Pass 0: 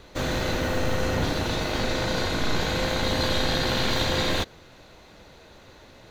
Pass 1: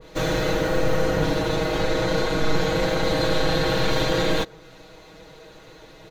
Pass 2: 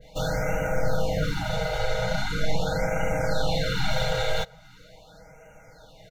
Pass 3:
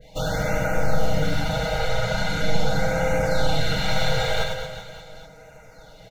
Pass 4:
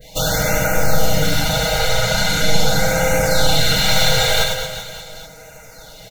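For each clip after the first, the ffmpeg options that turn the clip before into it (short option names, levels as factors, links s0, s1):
-af "equalizer=f=440:w=3.8:g=5.5,aecho=1:1:6.3:0.96,adynamicequalizer=threshold=0.01:dfrequency=1900:dqfactor=0.7:tfrequency=1900:tqfactor=0.7:attack=5:release=100:ratio=0.375:range=2:mode=cutabove:tftype=highshelf"
-af "aecho=1:1:1.4:0.92,afftfilt=real='re*(1-between(b*sr/1024,230*pow(4100/230,0.5+0.5*sin(2*PI*0.41*pts/sr))/1.41,230*pow(4100/230,0.5+0.5*sin(2*PI*0.41*pts/sr))*1.41))':imag='im*(1-between(b*sr/1024,230*pow(4100/230,0.5+0.5*sin(2*PI*0.41*pts/sr))/1.41,230*pow(4100/230,0.5+0.5*sin(2*PI*0.41*pts/sr))*1.41))':win_size=1024:overlap=0.75,volume=0.501"
-af "aecho=1:1:100|225|381.2|576.6|820.7:0.631|0.398|0.251|0.158|0.1,volume=1.19"
-af "crystalizer=i=3.5:c=0,volume=1.68"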